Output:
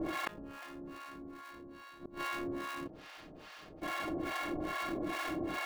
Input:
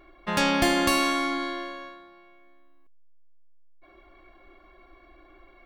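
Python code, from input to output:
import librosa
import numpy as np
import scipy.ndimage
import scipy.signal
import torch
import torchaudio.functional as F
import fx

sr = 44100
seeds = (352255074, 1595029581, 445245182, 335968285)

p1 = fx.bin_compress(x, sr, power=0.6)
p2 = fx.env_lowpass(p1, sr, base_hz=2700.0, full_db=-21.5)
p3 = scipy.signal.sosfilt(scipy.signal.butter(4, 6900.0, 'lowpass', fs=sr, output='sos'), p2)
p4 = fx.env_lowpass_down(p3, sr, base_hz=2000.0, full_db=-21.0)
p5 = scipy.signal.sosfilt(scipy.signal.butter(2, 250.0, 'highpass', fs=sr, output='sos'), p4)
p6 = p5 + 0.76 * np.pad(p5, (int(6.5 * sr / 1000.0), 0))[:len(p5)]
p7 = fx.sample_hold(p6, sr, seeds[0], rate_hz=1400.0, jitter_pct=20)
p8 = p6 + (p7 * 10.0 ** (-4.0 / 20.0))
p9 = fx.gate_flip(p8, sr, shuts_db=-24.0, range_db=-40)
p10 = fx.harmonic_tremolo(p9, sr, hz=2.4, depth_pct=100, crossover_hz=680.0)
p11 = fx.env_flatten(p10, sr, amount_pct=50)
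y = p11 * 10.0 ** (4.0 / 20.0)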